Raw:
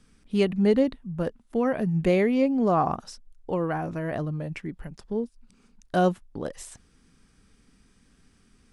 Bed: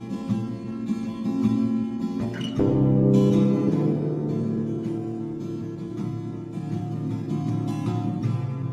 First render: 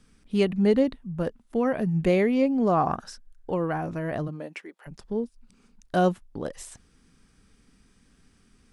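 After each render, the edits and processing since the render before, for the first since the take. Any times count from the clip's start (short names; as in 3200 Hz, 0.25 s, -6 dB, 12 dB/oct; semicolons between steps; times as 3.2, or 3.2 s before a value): 2.88–3.51 bell 1600 Hz +12.5 dB 0.33 oct; 4.27–4.86 HPF 160 Hz -> 570 Hz 24 dB/oct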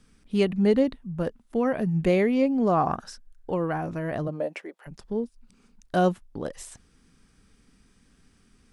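4.25–4.76 bell 600 Hz +11.5 dB 1 oct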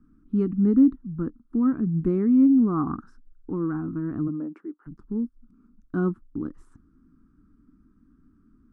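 EQ curve 180 Hz 0 dB, 300 Hz +10 dB, 590 Hz -26 dB, 1300 Hz 0 dB, 2000 Hz -23 dB, 3000 Hz -29 dB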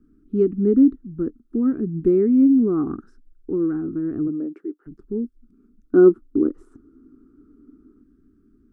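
5.85–8.03 spectral gain 230–1500 Hz +8 dB; fifteen-band EQ 160 Hz -4 dB, 400 Hz +12 dB, 1000 Hz -11 dB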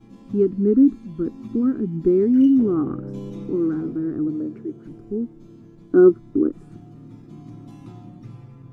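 add bed -14.5 dB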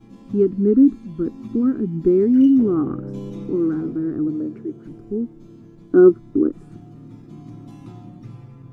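gain +1.5 dB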